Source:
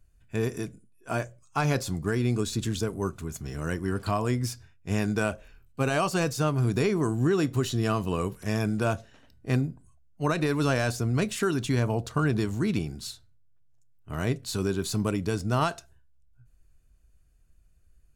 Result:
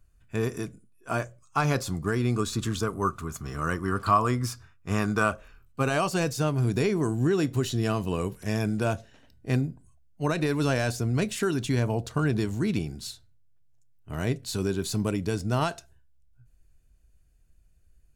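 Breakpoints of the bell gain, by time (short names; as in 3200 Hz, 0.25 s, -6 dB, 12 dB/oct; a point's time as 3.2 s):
bell 1200 Hz 0.44 oct
2.12 s +5.5 dB
2.6 s +15 dB
5.19 s +15 dB
5.8 s +6 dB
6.16 s -4 dB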